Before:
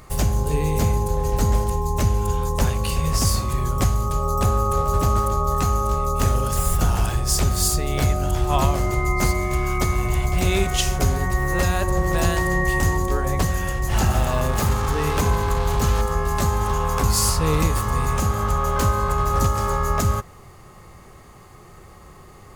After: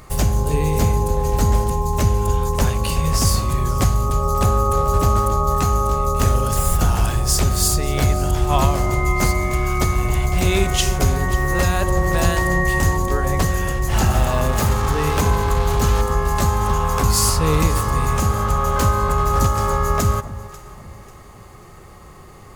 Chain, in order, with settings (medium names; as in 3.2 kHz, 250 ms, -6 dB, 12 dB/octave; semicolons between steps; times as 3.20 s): echo whose repeats swap between lows and highs 271 ms, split 1.1 kHz, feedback 60%, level -14 dB; trim +2.5 dB